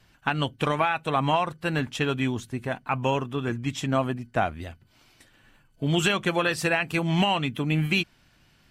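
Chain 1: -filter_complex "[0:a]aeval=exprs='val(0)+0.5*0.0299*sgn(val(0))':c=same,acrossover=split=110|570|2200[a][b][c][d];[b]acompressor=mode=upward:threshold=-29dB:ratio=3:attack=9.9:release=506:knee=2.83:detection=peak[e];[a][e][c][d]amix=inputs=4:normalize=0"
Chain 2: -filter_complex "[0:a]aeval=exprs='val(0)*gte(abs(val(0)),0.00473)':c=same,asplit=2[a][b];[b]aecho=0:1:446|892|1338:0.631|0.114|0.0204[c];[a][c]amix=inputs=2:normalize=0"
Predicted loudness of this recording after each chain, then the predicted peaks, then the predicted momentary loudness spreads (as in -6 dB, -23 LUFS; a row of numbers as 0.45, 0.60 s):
-25.0, -25.0 LUFS; -7.5, -8.0 dBFS; 11, 8 LU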